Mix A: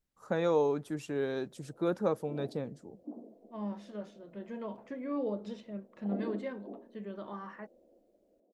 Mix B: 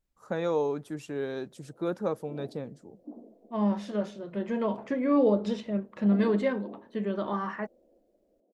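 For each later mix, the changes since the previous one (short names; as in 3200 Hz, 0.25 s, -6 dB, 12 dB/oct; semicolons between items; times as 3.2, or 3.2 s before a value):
second voice +11.5 dB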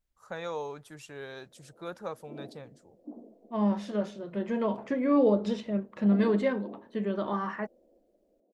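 first voice: add bell 270 Hz -14.5 dB 2 oct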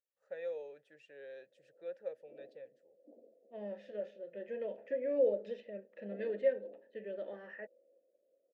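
master: add vowel filter e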